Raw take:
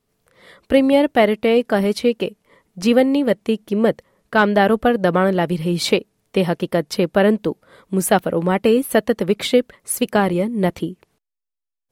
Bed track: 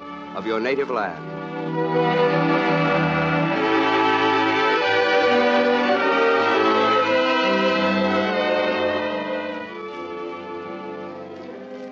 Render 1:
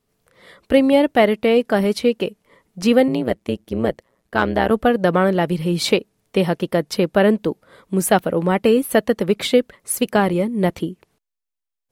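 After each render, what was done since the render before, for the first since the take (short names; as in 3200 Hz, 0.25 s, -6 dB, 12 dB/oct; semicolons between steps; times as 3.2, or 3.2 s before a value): 3.08–4.71 AM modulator 120 Hz, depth 80%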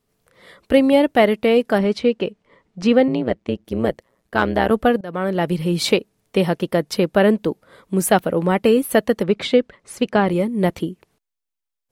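1.78–3.65 air absorption 100 m; 5.01–5.49 fade in, from -23.5 dB; 9.23–10.28 air absorption 92 m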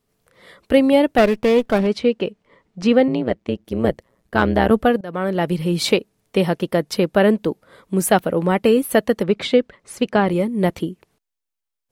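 1.18–1.87 running maximum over 9 samples; 3.84–4.83 low shelf 240 Hz +6.5 dB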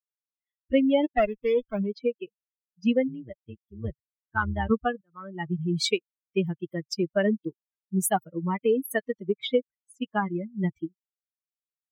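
per-bin expansion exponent 3; compressor 1.5:1, threshold -24 dBFS, peak gain reduction 4.5 dB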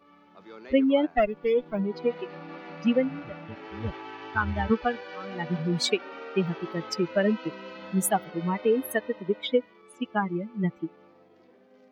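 add bed track -22.5 dB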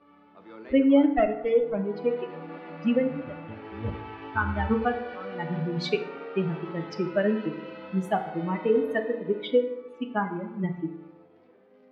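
air absorption 240 m; FDN reverb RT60 0.94 s, low-frequency decay 0.95×, high-frequency decay 0.55×, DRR 5.5 dB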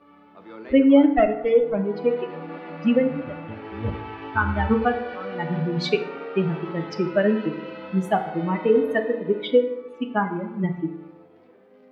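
gain +4.5 dB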